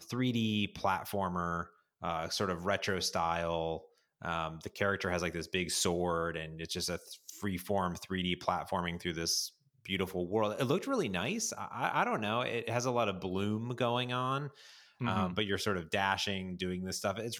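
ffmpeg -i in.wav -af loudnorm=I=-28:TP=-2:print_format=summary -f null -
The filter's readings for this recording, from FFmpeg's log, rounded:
Input Integrated:    -34.3 LUFS
Input True Peak:     -13.7 dBTP
Input LRA:             1.5 LU
Input Threshold:     -44.5 LUFS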